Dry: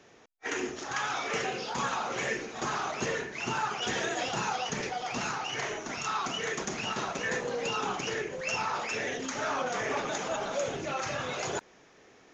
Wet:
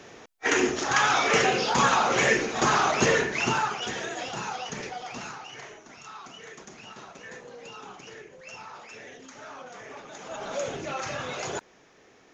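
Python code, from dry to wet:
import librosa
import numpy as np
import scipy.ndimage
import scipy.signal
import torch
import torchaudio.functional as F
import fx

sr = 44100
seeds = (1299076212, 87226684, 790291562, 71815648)

y = fx.gain(x, sr, db=fx.line((3.35, 10.0), (3.95, -2.0), (4.97, -2.0), (5.84, -11.5), (10.09, -11.5), (10.54, 0.5)))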